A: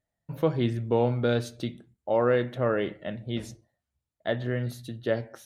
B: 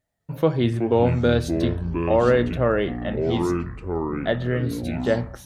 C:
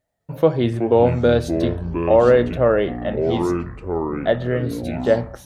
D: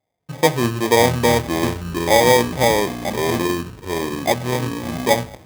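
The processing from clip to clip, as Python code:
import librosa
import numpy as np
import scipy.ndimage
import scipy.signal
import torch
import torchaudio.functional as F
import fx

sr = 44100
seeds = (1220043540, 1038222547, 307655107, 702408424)

y1 = fx.echo_pitch(x, sr, ms=198, semitones=-6, count=3, db_per_echo=-6.0)
y1 = y1 * 10.0 ** (5.0 / 20.0)
y2 = fx.peak_eq(y1, sr, hz=590.0, db=6.0, octaves=1.3)
y3 = fx.sample_hold(y2, sr, seeds[0], rate_hz=1400.0, jitter_pct=0)
y3 = scipy.signal.sosfilt(scipy.signal.butter(2, 78.0, 'highpass', fs=sr, output='sos'), y3)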